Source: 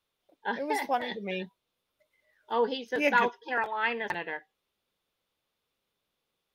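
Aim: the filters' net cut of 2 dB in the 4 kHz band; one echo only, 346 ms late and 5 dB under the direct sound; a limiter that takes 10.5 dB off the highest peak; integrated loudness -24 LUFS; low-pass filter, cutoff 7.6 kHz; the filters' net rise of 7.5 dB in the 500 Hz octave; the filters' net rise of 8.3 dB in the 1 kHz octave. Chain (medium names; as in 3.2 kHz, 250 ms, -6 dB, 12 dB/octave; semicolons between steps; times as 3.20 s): low-pass 7.6 kHz; peaking EQ 500 Hz +6.5 dB; peaking EQ 1 kHz +8 dB; peaking EQ 4 kHz -3.5 dB; peak limiter -16.5 dBFS; delay 346 ms -5 dB; trim +3.5 dB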